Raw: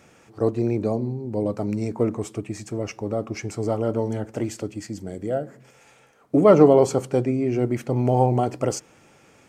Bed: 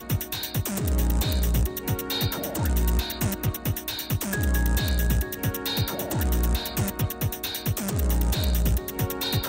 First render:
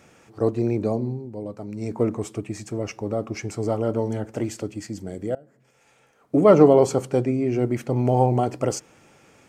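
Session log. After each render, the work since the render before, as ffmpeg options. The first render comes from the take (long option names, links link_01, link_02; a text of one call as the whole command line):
ffmpeg -i in.wav -filter_complex "[0:a]asplit=4[link_01][link_02][link_03][link_04];[link_01]atrim=end=1.32,asetpts=PTS-STARTPTS,afade=type=out:start_time=1.14:duration=0.18:silence=0.375837[link_05];[link_02]atrim=start=1.32:end=1.74,asetpts=PTS-STARTPTS,volume=-8.5dB[link_06];[link_03]atrim=start=1.74:end=5.35,asetpts=PTS-STARTPTS,afade=type=in:duration=0.18:silence=0.375837,afade=type=out:start_time=3.606:duration=0.004:curve=hsin:silence=0.0630957[link_07];[link_04]atrim=start=5.35,asetpts=PTS-STARTPTS,afade=type=in:duration=1.14:silence=0.0630957[link_08];[link_05][link_06][link_07][link_08]concat=n=4:v=0:a=1" out.wav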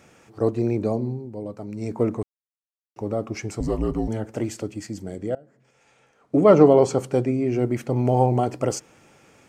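ffmpeg -i in.wav -filter_complex "[0:a]asettb=1/sr,asplit=3[link_01][link_02][link_03];[link_01]atrim=end=3.604[link_04];[link_02]atrim=start=3.6:end=4.08,asetpts=PTS-STARTPTS,afade=type=in:duration=0.004:curve=qsin,afade=type=out:start_time=0.476:duration=0.004:curve=qsin,afreqshift=-170[link_05];[link_03]atrim=start=4.076[link_06];[link_04][link_05]acrossfade=duration=0.004:curve1=hsin:curve2=qsin[link_07];[link_07][link_06]acrossfade=duration=0.004:curve1=qsin:curve2=hsin,asettb=1/sr,asplit=3[link_08][link_09][link_10];[link_08]atrim=end=5.164[link_11];[link_09]atrim=start=5.16:end=6.99,asetpts=PTS-STARTPTS,afade=type=in:duration=0.004:curve=qsin,afade=type=out:start_time=1.826:duration=0.004:curve=qsin,lowpass=8100[link_12];[link_10]atrim=start=6.986[link_13];[link_11][link_12]acrossfade=duration=0.004:curve1=hsin:curve2=qsin[link_14];[link_14][link_13]acrossfade=duration=0.004:curve1=qsin:curve2=hsin,asplit=3[link_15][link_16][link_17];[link_15]atrim=end=2.23,asetpts=PTS-STARTPTS,afade=type=out:start_time=2.226:duration=0.004:curve=hsin[link_18];[link_16]atrim=start=2.23:end=2.96,asetpts=PTS-STARTPTS,volume=0[link_19];[link_17]atrim=start=2.96,asetpts=PTS-STARTPTS,afade=type=in:duration=0.004:curve=hsin[link_20];[link_18][link_19][link_20]concat=n=3:v=0:a=1" out.wav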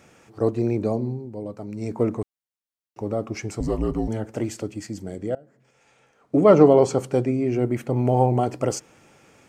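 ffmpeg -i in.wav -filter_complex "[0:a]asettb=1/sr,asplit=3[link_01][link_02][link_03];[link_01]atrim=end=7.554[link_04];[link_02]atrim=start=7.55:end=8.41,asetpts=PTS-STARTPTS,afade=type=in:duration=0.004:curve=qsin,afade=type=out:start_time=0.856:duration=0.004:curve=qsin,equalizer=frequency=5300:width=1.5:gain=-5[link_05];[link_03]atrim=start=8.406[link_06];[link_04][link_05]acrossfade=duration=0.004:curve1=hsin:curve2=qsin[link_07];[link_07][link_06]acrossfade=duration=0.004:curve1=qsin:curve2=hsin" out.wav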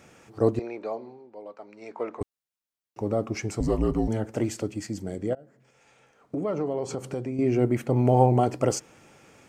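ffmpeg -i in.wav -filter_complex "[0:a]asettb=1/sr,asplit=3[link_01][link_02][link_03];[link_01]atrim=end=0.594[link_04];[link_02]atrim=start=0.59:end=2.21,asetpts=PTS-STARTPTS,afade=type=in:duration=0.004:curve=qsin,afade=type=out:start_time=1.616:duration=0.004:curve=qsin,highpass=690,lowpass=3400[link_05];[link_03]atrim=start=2.206[link_06];[link_04][link_05]acrossfade=duration=0.004:curve1=hsin:curve2=qsin[link_07];[link_07][link_06]acrossfade=duration=0.004:curve1=qsin:curve2=hsin,asettb=1/sr,asplit=3[link_08][link_09][link_10];[link_08]atrim=end=5.334[link_11];[link_09]atrim=start=5.33:end=7.39,asetpts=PTS-STARTPTS,afade=type=in:duration=0.004:curve=qsin,afade=type=out:start_time=2.056:duration=0.004:curve=qsin,acompressor=threshold=-30dB:ratio=3:attack=3.2:release=140:knee=1:detection=peak[link_12];[link_10]atrim=start=7.386[link_13];[link_11][link_12]acrossfade=duration=0.004:curve1=hsin:curve2=qsin[link_14];[link_14][link_13]acrossfade=duration=0.004:curve1=qsin:curve2=hsin" out.wav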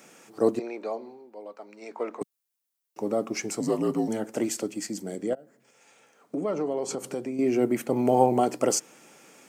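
ffmpeg -i in.wav -af "highpass=frequency=180:width=0.5412,highpass=frequency=180:width=1.3066,highshelf=frequency=6400:gain=11.5" out.wav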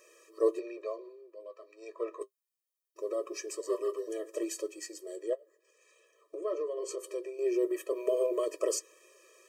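ffmpeg -i in.wav -af "flanger=delay=6.5:depth=2.6:regen=-50:speed=0.24:shape=triangular,afftfilt=real='re*eq(mod(floor(b*sr/1024/330),2),1)':imag='im*eq(mod(floor(b*sr/1024/330),2),1)':win_size=1024:overlap=0.75" out.wav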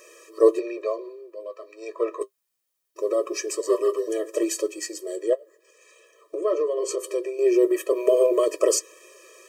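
ffmpeg -i in.wav -af "volume=10.5dB" out.wav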